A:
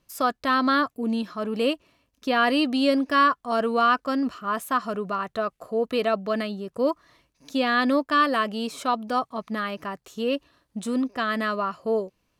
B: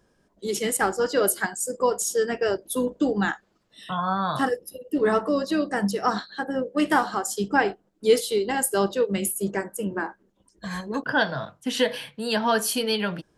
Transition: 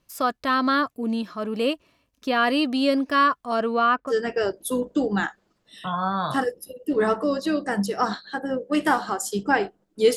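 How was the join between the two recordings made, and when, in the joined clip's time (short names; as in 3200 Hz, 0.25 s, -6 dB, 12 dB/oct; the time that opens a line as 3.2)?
A
3.54–4.13 LPF 9700 Hz -> 1400 Hz
4.1 switch to B from 2.15 s, crossfade 0.06 s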